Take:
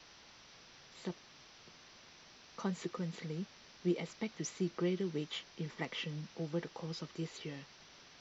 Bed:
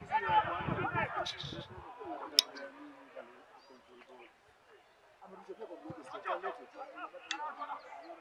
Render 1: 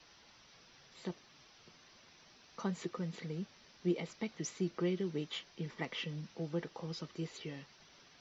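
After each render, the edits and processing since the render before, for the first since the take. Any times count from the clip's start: noise reduction 6 dB, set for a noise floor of -59 dBFS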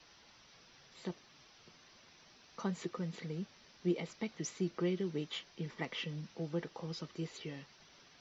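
no audible change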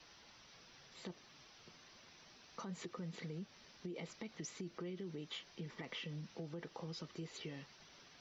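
peak limiter -33.5 dBFS, peak gain reduction 11.5 dB; compression 2.5:1, threshold -44 dBFS, peak gain reduction 5 dB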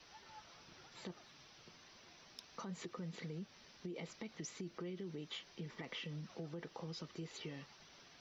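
add bed -29 dB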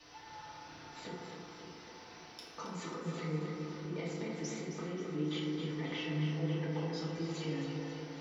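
tape echo 268 ms, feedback 75%, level -4.5 dB, low-pass 4.6 kHz; FDN reverb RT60 1.7 s, low-frequency decay 0.75×, high-frequency decay 0.35×, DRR -5.5 dB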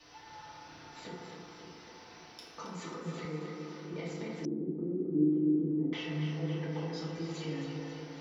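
3.25–3.94 s: high-pass 180 Hz; 4.45–5.93 s: resonant low-pass 320 Hz, resonance Q 3.5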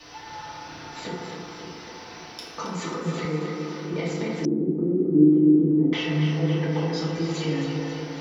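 trim +11.5 dB

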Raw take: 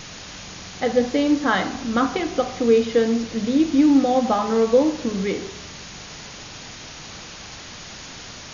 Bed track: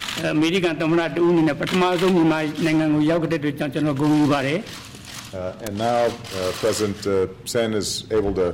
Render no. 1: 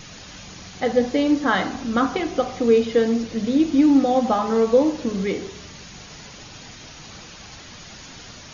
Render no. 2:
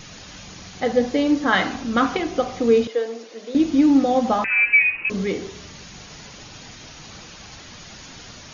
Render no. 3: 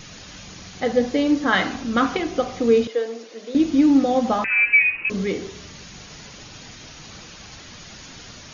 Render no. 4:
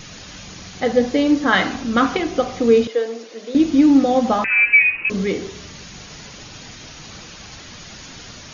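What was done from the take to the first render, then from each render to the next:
noise reduction 6 dB, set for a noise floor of -39 dBFS
1.52–2.17 s: dynamic bell 2.4 kHz, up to +6 dB, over -36 dBFS, Q 0.9; 2.87–3.55 s: ladder high-pass 330 Hz, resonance 25%; 4.44–5.10 s: frequency inversion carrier 2.8 kHz
peaking EQ 830 Hz -2 dB
trim +3 dB

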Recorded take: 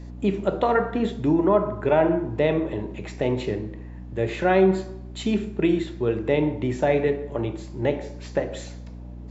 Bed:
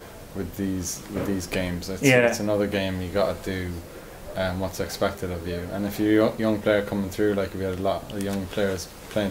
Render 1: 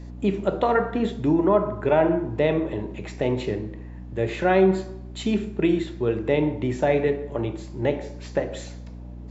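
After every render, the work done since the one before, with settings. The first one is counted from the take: no audible change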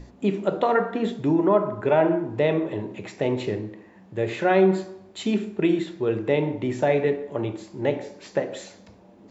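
hum notches 60/120/180/240/300 Hz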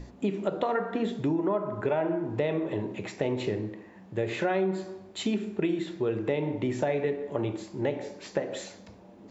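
compression 4:1, threshold -25 dBFS, peak gain reduction 10.5 dB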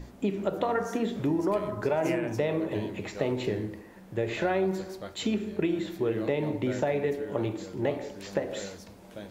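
add bed -17.5 dB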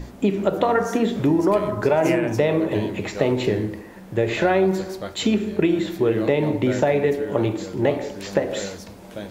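trim +8.5 dB

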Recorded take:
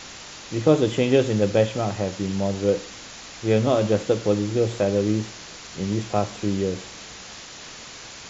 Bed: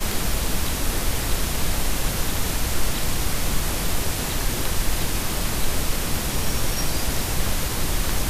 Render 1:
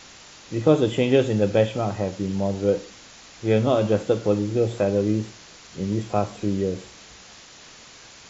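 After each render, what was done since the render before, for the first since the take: noise print and reduce 6 dB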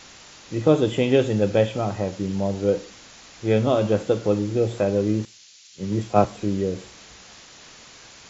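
5.25–6.25 s: three bands expanded up and down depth 100%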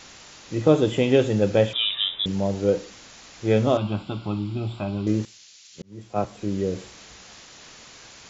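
1.73–2.26 s: frequency inversion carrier 3.7 kHz; 3.77–5.07 s: static phaser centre 1.8 kHz, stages 6; 5.82–6.74 s: fade in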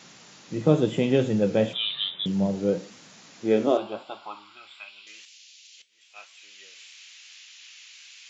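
flange 0.95 Hz, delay 4.3 ms, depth 10 ms, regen +75%; high-pass sweep 160 Hz -> 2.6 kHz, 3.25–4.95 s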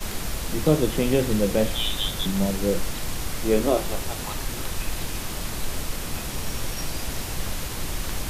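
add bed -6 dB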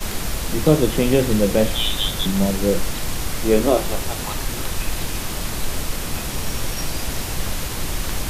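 trim +4.5 dB

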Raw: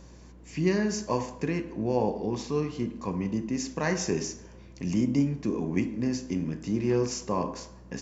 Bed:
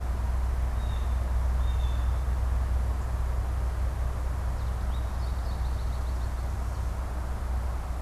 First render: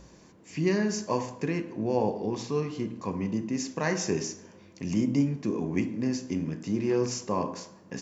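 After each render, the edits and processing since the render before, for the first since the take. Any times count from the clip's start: de-hum 60 Hz, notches 5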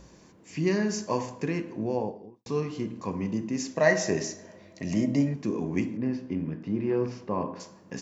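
1.72–2.46 s: studio fade out; 3.75–5.34 s: small resonant body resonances 630/1900/4000 Hz, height 15 dB; 5.97–7.60 s: distance through air 330 m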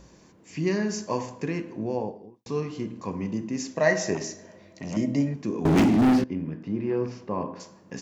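4.15–4.97 s: transformer saturation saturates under 580 Hz; 5.65–6.24 s: waveshaping leveller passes 5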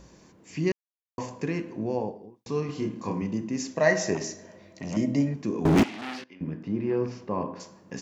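0.72–1.18 s: mute; 2.66–3.22 s: doubling 28 ms -2 dB; 5.83–6.41 s: band-pass filter 3 kHz, Q 0.95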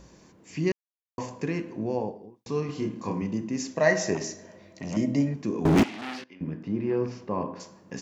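no audible change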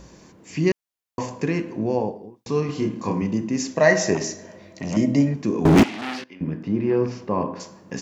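trim +6 dB; peak limiter -3 dBFS, peak gain reduction 1.5 dB

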